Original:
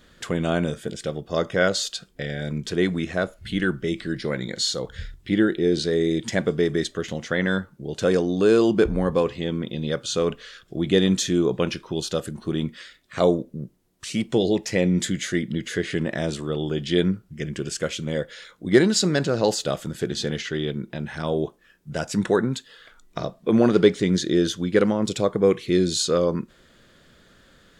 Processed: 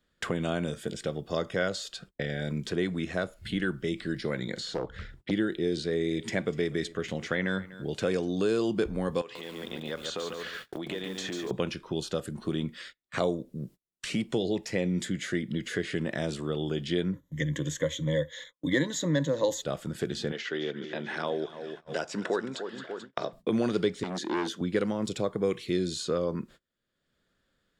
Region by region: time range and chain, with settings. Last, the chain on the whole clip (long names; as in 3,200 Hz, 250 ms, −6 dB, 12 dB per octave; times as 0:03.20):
0:04.60–0:05.31: high-shelf EQ 3,200 Hz −8 dB + highs frequency-modulated by the lows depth 0.93 ms
0:05.84–0:08.28: parametric band 2,300 Hz +6 dB 0.38 octaves + single-tap delay 245 ms −21.5 dB
0:09.21–0:11.51: downward compressor 12 to 1, threshold −27 dBFS + meter weighting curve A + feedback echo at a low word length 142 ms, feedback 35%, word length 8 bits, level −4 dB
0:17.13–0:19.62: noise gate −43 dBFS, range −7 dB + EQ curve with evenly spaced ripples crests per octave 1.1, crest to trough 17 dB
0:20.32–0:23.33: band-pass filter 340–6,200 Hz + echo with a time of its own for lows and highs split 1,300 Hz, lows 295 ms, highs 219 ms, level −13 dB
0:24.03–0:24.61: high-pass filter 200 Hz 24 dB per octave + saturating transformer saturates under 1,400 Hz
whole clip: notch filter 6,200 Hz, Q 22; noise gate −43 dBFS, range −34 dB; multiband upward and downward compressor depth 70%; level −7.5 dB